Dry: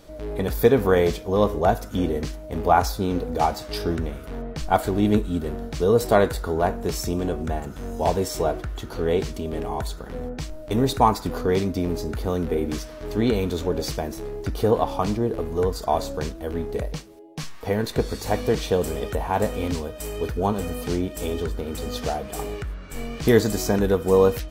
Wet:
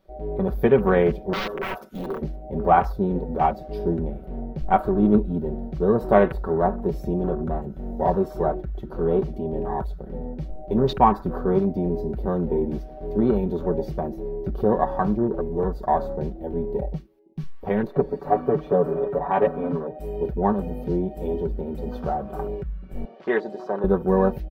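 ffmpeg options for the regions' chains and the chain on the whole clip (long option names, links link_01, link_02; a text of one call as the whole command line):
ffmpeg -i in.wav -filter_complex "[0:a]asettb=1/sr,asplit=3[link_01][link_02][link_03];[link_01]atrim=end=1.334[link_04];[link_02]atrim=start=1.33:end=2.22,asetpts=PTS-STARTPTS,afade=type=in:duration=0.004:curve=qsin,afade=type=out:start_time=0.886:duration=0.004:curve=qsin,highpass=frequency=470:poles=1,highshelf=frequency=2100:gain=8,aeval=exprs='(mod(10.6*val(0)+1,2)-1)/10.6':channel_layout=same[link_05];[link_03]atrim=start=2.216[link_06];[link_04][link_05]acrossfade=duration=0.004:curve1=hsin:curve2=qsin[link_07];[link_07][link_06]acrossfade=duration=0.004:curve1=qsin:curve2=hsin,asettb=1/sr,asplit=3[link_08][link_09][link_10];[link_08]atrim=end=17.874[link_11];[link_09]atrim=start=17.87:end=19.99,asetpts=PTS-STARTPTS,afade=type=in:duration=0.004:curve=qsin,afade=type=out:start_time=2.116:duration=0.004:curve=qsin,acrossover=split=150 2400:gain=0.224 1 0.251[link_12][link_13][link_14];[link_12][link_13][link_14]amix=inputs=3:normalize=0,aecho=1:1:7:0.96,atrim=end_sample=93492[link_15];[link_10]atrim=start=19.986[link_16];[link_11][link_15]acrossfade=duration=0.004:curve1=hsin:curve2=qsin[link_17];[link_17][link_16]acrossfade=duration=0.004:curve1=qsin:curve2=hsin,asettb=1/sr,asplit=3[link_18][link_19][link_20];[link_18]atrim=end=23.054[link_21];[link_19]atrim=start=23.05:end=23.84,asetpts=PTS-STARTPTS,afade=type=in:duration=0.004:curve=qsin,afade=type=out:start_time=0.786:duration=0.004:curve=qsin,highpass=530,lowpass=4400,equalizer=frequency=2400:width=6.4:gain=-7[link_22];[link_20]atrim=start=23.836[link_23];[link_21][link_22]acrossfade=duration=0.004:curve1=hsin:curve2=qsin[link_24];[link_24][link_23]acrossfade=duration=0.004:curve1=qsin:curve2=hsin,afwtdn=0.0251,equalizer=frequency=7700:width=0.87:gain=-14.5,aecho=1:1:5.3:0.65" out.wav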